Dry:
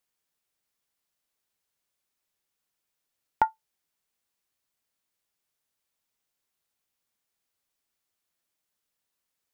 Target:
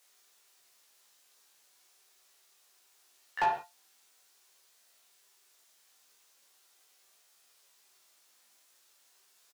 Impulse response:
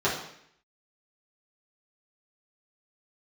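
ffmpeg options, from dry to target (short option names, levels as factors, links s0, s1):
-filter_complex "[0:a]bass=f=250:g=-4,treble=f=4000:g=13,alimiter=limit=0.126:level=0:latency=1:release=119,flanger=delay=17.5:depth=2.4:speed=0.41,asplit=2[s0][s1];[s1]adelay=16,volume=0.531[s2];[s0][s2]amix=inputs=2:normalize=0,asplit=3[s3][s4][s5];[s4]asetrate=35002,aresample=44100,atempo=1.25992,volume=0.447[s6];[s5]asetrate=88200,aresample=44100,atempo=0.5,volume=0.141[s7];[s3][s6][s7]amix=inputs=3:normalize=0,asplit=2[s8][s9];[s9]highpass=f=720:p=1,volume=14.1,asoftclip=type=tanh:threshold=0.0944[s10];[s8][s10]amix=inputs=2:normalize=0,lowpass=f=2400:p=1,volume=0.501,asplit=2[s11][s12];[1:a]atrim=start_sample=2205,atrim=end_sample=6174,adelay=38[s13];[s12][s13]afir=irnorm=-1:irlink=0,volume=0.158[s14];[s11][s14]amix=inputs=2:normalize=0"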